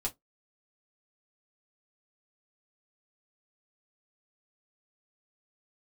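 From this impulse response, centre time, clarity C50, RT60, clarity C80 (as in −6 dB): 8 ms, 23.0 dB, 0.15 s, 37.0 dB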